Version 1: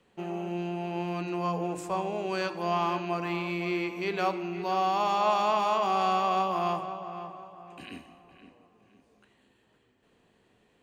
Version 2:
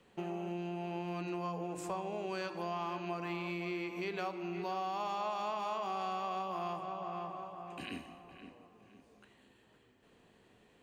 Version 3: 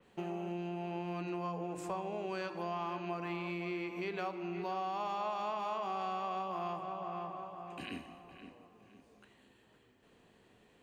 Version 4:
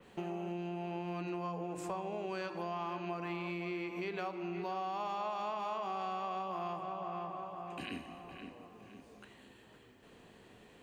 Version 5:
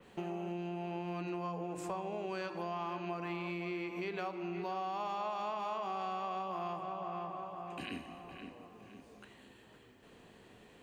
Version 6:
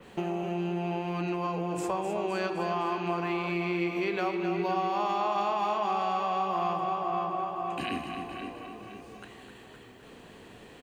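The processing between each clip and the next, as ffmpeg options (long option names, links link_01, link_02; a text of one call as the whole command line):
ffmpeg -i in.wav -af "acompressor=threshold=-38dB:ratio=4,volume=1dB" out.wav
ffmpeg -i in.wav -af "adynamicequalizer=threshold=0.00178:dfrequency=3600:dqfactor=0.7:tfrequency=3600:tqfactor=0.7:attack=5:release=100:ratio=0.375:range=2.5:mode=cutabove:tftype=highshelf" out.wav
ffmpeg -i in.wav -af "acompressor=threshold=-55dB:ratio=1.5,volume=6.5dB" out.wav
ffmpeg -i in.wav -af anull out.wav
ffmpeg -i in.wav -af "aecho=1:1:258|516|774|1032|1290|1548|1806:0.398|0.223|0.125|0.0699|0.0392|0.0219|0.0123,volume=8dB" out.wav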